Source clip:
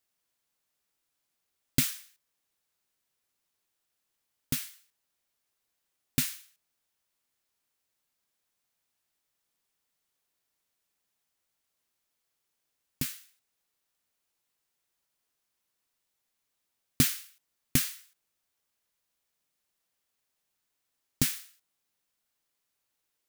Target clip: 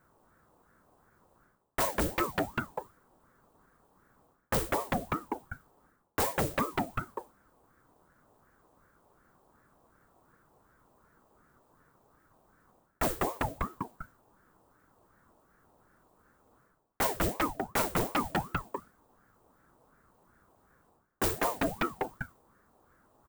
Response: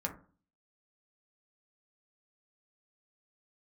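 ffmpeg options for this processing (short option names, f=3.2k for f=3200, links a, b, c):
-filter_complex "[0:a]asplit=6[a][b][c][d][e][f];[b]adelay=198,afreqshift=110,volume=-8.5dB[g];[c]adelay=396,afreqshift=220,volume=-15.6dB[h];[d]adelay=594,afreqshift=330,volume=-22.8dB[i];[e]adelay=792,afreqshift=440,volume=-29.9dB[j];[f]adelay=990,afreqshift=550,volume=-37dB[k];[a][g][h][i][j][k]amix=inputs=6:normalize=0,aexciter=amount=1.3:drive=5.9:freq=7.6k,firequalizer=gain_entry='entry(320,0);entry(640,7);entry(1900,-26)':delay=0.05:min_phase=1,areverse,acompressor=threshold=-41dB:ratio=10,areverse,aeval=exprs='0.0316*(cos(1*acos(clip(val(0)/0.0316,-1,1)))-cos(1*PI/2))+0.00224*(cos(8*acos(clip(val(0)/0.0316,-1,1)))-cos(8*PI/2))':c=same,asplit=2[l][m];[1:a]atrim=start_sample=2205,asetrate=74970,aresample=44100[n];[m][n]afir=irnorm=-1:irlink=0,volume=-4.5dB[o];[l][o]amix=inputs=2:normalize=0,aeval=exprs='0.0473*sin(PI/2*6.31*val(0)/0.0473)':c=same,aeval=exprs='val(0)*sin(2*PI*500*n/s+500*0.65/2.7*sin(2*PI*2.7*n/s))':c=same,volume=6dB"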